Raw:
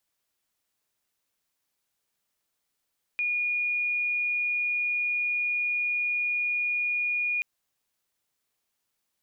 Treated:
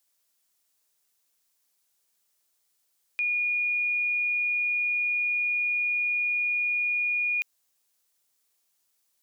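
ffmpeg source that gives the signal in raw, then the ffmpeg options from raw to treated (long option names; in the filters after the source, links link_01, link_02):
-f lavfi -i "aevalsrc='0.0596*sin(2*PI*2440*t)':duration=4.23:sample_rate=44100"
-af "bass=frequency=250:gain=-6,treble=frequency=4000:gain=8"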